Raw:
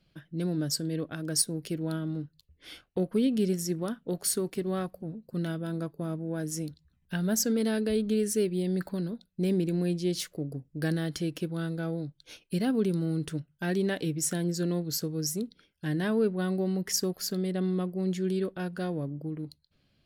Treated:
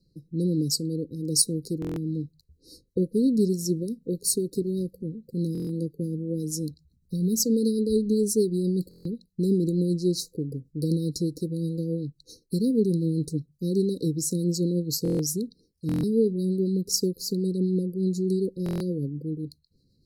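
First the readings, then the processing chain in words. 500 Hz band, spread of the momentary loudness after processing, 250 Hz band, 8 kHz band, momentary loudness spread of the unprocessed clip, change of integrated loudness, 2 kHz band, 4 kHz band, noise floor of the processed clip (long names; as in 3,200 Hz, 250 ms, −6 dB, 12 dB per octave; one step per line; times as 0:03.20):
+3.5 dB, 10 LU, +4.0 dB, +3.5 dB, 10 LU, +4.0 dB, below −20 dB, +3.0 dB, −68 dBFS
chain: rotating-speaker cabinet horn 1.2 Hz, later 8 Hz, at 0:02.10
linear-phase brick-wall band-stop 540–3,800 Hz
buffer that repeats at 0:01.80/0:05.53/0:08.89/0:15.03/0:15.87/0:18.64, samples 1,024, times 6
level +5.5 dB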